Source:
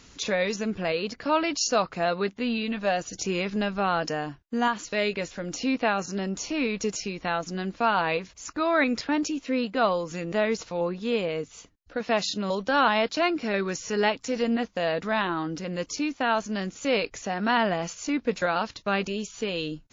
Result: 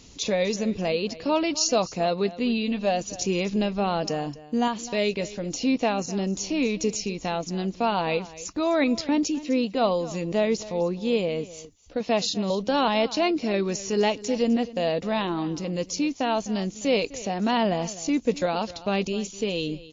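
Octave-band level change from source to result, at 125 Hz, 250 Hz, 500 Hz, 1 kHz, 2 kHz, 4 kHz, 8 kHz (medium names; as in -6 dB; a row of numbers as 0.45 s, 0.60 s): +3.5 dB, +3.5 dB, +2.0 dB, -1.0 dB, -4.5 dB, +1.5 dB, no reading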